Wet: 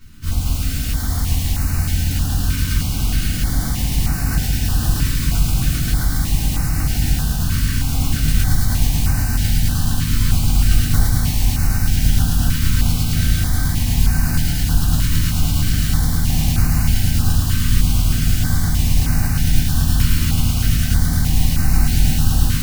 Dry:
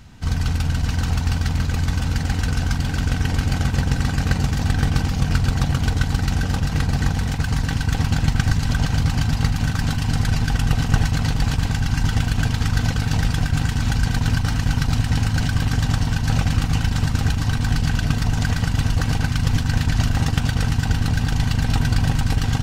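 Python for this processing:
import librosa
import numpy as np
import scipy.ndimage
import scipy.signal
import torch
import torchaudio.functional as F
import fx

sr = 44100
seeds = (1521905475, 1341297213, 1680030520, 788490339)

p1 = fx.peak_eq(x, sr, hz=470.0, db=-10.0, octaves=0.35)
p2 = fx.mod_noise(p1, sr, seeds[0], snr_db=11)
p3 = p2 + fx.echo_wet_highpass(p2, sr, ms=107, feedback_pct=85, hz=1700.0, wet_db=-3.5, dry=0)
p4 = fx.room_shoebox(p3, sr, seeds[1], volume_m3=270.0, walls='furnished', distance_m=3.3)
p5 = fx.filter_held_notch(p4, sr, hz=3.2, low_hz=750.0, high_hz=3300.0)
y = p5 * 10.0 ** (-7.5 / 20.0)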